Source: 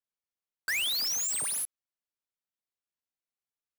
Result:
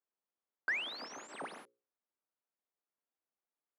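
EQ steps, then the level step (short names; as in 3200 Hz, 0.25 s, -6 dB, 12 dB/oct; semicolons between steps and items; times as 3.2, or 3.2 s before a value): HPF 220 Hz 24 dB/oct; LPF 1300 Hz 12 dB/oct; notches 60/120/180/240/300/360/420/480/540 Hz; +4.5 dB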